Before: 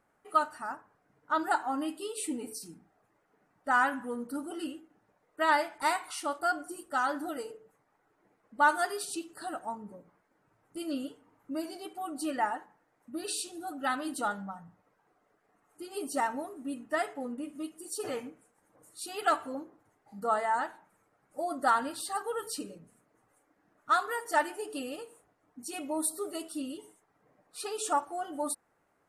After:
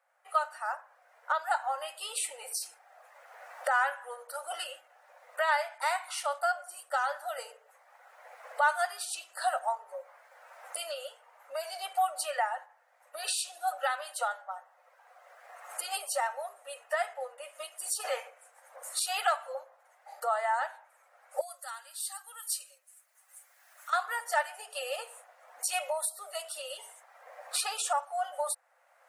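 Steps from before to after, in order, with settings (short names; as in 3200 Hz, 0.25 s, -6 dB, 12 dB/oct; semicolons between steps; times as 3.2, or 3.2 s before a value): recorder AGC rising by 18 dB/s; rippled Chebyshev high-pass 510 Hz, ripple 3 dB; 21.41–23.93 differentiator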